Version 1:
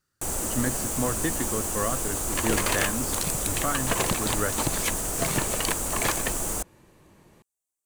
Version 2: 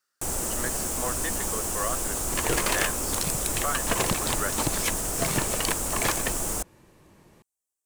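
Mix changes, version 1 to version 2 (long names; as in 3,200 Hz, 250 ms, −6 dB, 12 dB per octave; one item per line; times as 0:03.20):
speech: add high-pass filter 580 Hz
master: remove notch filter 5,300 Hz, Q 16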